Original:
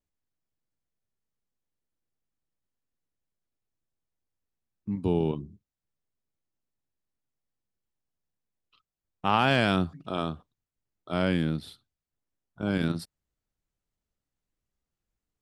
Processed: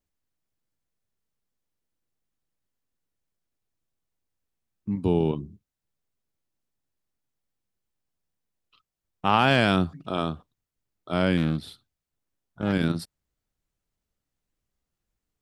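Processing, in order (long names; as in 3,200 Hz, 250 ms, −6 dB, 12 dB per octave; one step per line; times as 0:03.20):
0:11.37–0:12.73: highs frequency-modulated by the lows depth 0.24 ms
level +3 dB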